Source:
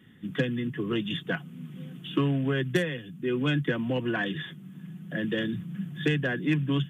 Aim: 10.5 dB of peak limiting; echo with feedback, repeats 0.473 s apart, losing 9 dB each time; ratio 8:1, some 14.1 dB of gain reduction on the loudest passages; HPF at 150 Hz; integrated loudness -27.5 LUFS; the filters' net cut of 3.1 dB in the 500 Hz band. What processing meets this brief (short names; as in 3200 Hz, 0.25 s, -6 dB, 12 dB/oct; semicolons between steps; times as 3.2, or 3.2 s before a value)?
HPF 150 Hz; bell 500 Hz -4 dB; compressor 8:1, threshold -37 dBFS; limiter -35 dBFS; feedback echo 0.473 s, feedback 35%, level -9 dB; gain +15.5 dB